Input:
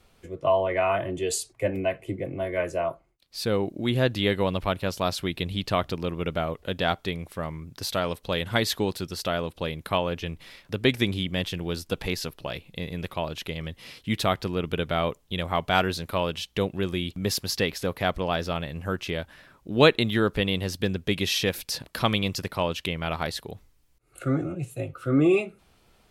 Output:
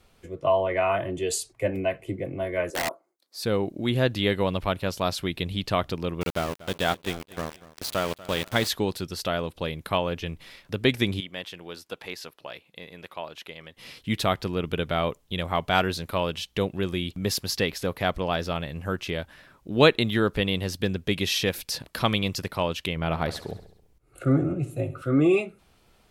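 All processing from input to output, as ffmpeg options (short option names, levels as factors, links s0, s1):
-filter_complex "[0:a]asettb=1/sr,asplit=3[s0][s1][s2];[s0]atrim=end=2.704[s3];[s1]atrim=start=2.7:end=3.43,asetpts=PTS-STARTPTS,afade=t=in:d=0.004:c=qsin,afade=t=out:st=0.726:d=0.004:c=qsin,highpass=f=280:w=0.5412,highpass=f=280:w=1.3066,equalizer=f=2700:w=1.6:g=-13,aeval=exprs='(mod(12.6*val(0)+1,2)-1)/12.6':c=same[s4];[s2]atrim=start=3.426[s5];[s3][s4]acrossfade=d=0.004:c1=hsin:c2=qsin[s6];[s6][s5]acrossfade=d=0.004:c1=qsin:c2=hsin,asettb=1/sr,asplit=3[s7][s8][s9];[s7]atrim=end=6.214[s10];[s8]atrim=start=6.21:end=8.68,asetpts=PTS-STARTPTS,afade=t=in:d=0.004:c=qsin,afade=t=out:st=2.466:d=0.004:c=qsin,aeval=exprs='val(0)*gte(abs(val(0)),0.0335)':c=same,aecho=1:1:240|480|720:0.119|0.0404|0.0137,atrim=end_sample=108927[s11];[s9]atrim=start=8.676[s12];[s10][s11]acrossfade=d=0.004:c1=hsin:c2=qsin[s13];[s13][s12]acrossfade=d=0.004:c1=qsin:c2=hsin,asettb=1/sr,asplit=3[s14][s15][s16];[s14]atrim=end=11.204[s17];[s15]atrim=start=11.2:end=13.77,asetpts=PTS-STARTPTS,afade=t=in:d=0.004:c=qsin,afade=t=out:st=2.566:d=0.004:c=qsin,highpass=f=950:p=1,highshelf=f=2400:g=-8.5[s18];[s16]atrim=start=13.766[s19];[s17][s18]acrossfade=d=0.004:c1=hsin:c2=qsin[s20];[s20][s19]acrossfade=d=0.004:c1=qsin:c2=hsin,asettb=1/sr,asplit=3[s21][s22][s23];[s21]atrim=end=22.964[s24];[s22]atrim=start=22.96:end=25.02,asetpts=PTS-STARTPTS,afade=t=in:d=0.004:c=qsin,afade=t=out:st=2.056:d=0.004:c=qsin,tiltshelf=f=1300:g=4,aecho=1:1:67|134|201|268|335|402:0.178|0.101|0.0578|0.0329|0.0188|0.0107,atrim=end_sample=90846[s25];[s23]atrim=start=25.016[s26];[s24][s25]acrossfade=d=0.004:c1=hsin:c2=qsin[s27];[s27][s26]acrossfade=d=0.004:c1=qsin:c2=hsin"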